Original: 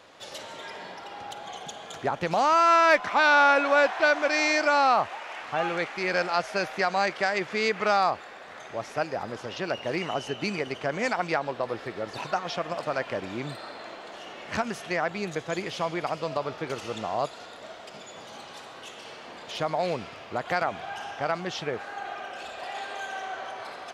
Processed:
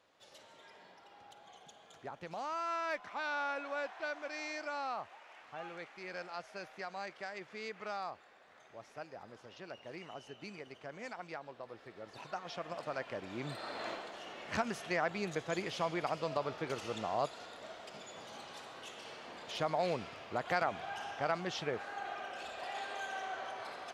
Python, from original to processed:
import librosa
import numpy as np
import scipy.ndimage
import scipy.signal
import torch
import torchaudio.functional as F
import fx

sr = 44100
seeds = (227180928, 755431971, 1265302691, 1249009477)

y = fx.gain(x, sr, db=fx.line((11.74, -18.0), (12.74, -10.5), (13.25, -10.5), (13.89, 1.0), (14.12, -6.0)))